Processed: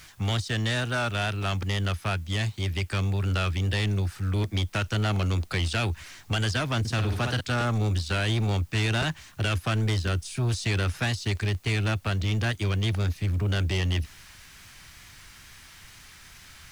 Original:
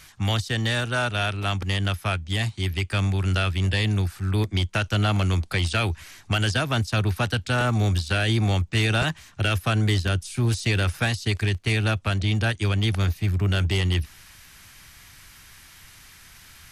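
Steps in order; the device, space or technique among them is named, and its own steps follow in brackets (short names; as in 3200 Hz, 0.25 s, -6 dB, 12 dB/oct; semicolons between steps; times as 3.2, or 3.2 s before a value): 6.79–7.41 flutter echo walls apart 9.8 m, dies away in 0.46 s; compact cassette (soft clip -21 dBFS, distortion -14 dB; LPF 9400 Hz 12 dB/oct; wow and flutter; white noise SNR 35 dB)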